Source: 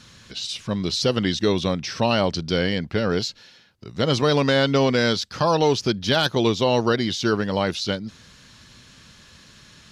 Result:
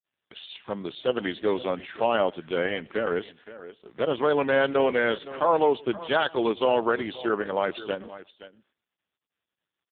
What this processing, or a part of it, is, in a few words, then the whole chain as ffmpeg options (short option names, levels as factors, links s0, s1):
satellite phone: -af "agate=range=0.00141:threshold=0.00708:ratio=16:detection=peak,highpass=370,lowpass=3400,aecho=1:1:115|230:0.0668|0.012,aecho=1:1:521:0.158" -ar 8000 -c:a libopencore_amrnb -b:a 4750